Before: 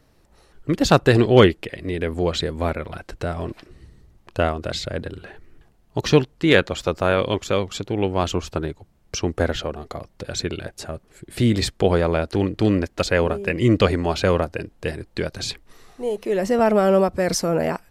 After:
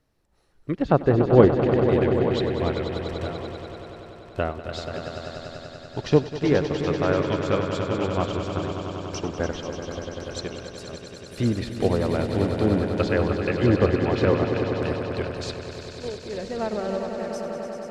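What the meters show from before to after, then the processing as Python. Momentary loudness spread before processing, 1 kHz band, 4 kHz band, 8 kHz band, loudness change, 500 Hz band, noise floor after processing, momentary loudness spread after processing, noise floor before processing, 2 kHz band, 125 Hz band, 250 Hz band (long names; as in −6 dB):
15 LU, −4.0 dB, −8.0 dB, −10.5 dB, −3.0 dB, −2.5 dB, −44 dBFS, 16 LU, −58 dBFS, −6.5 dB, −2.0 dB, −2.0 dB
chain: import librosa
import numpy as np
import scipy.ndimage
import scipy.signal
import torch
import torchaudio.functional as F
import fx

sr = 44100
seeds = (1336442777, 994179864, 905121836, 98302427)

p1 = fx.fade_out_tail(x, sr, length_s=2.06)
p2 = fx.env_lowpass_down(p1, sr, base_hz=990.0, full_db=-12.5)
p3 = p2 + fx.echo_swell(p2, sr, ms=97, loudest=5, wet_db=-8.5, dry=0)
p4 = fx.upward_expand(p3, sr, threshold_db=-31.0, expansion=1.5)
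y = p4 * 10.0 ** (-1.0 / 20.0)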